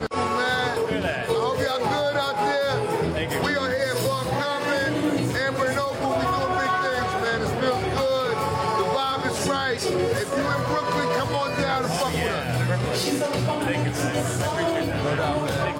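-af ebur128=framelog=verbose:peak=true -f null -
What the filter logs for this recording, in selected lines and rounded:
Integrated loudness:
  I:         -23.9 LUFS
  Threshold: -33.9 LUFS
Loudness range:
  LRA:         0.6 LU
  Threshold: -43.9 LUFS
  LRA low:   -24.2 LUFS
  LRA high:  -23.6 LUFS
True peak:
  Peak:      -11.6 dBFS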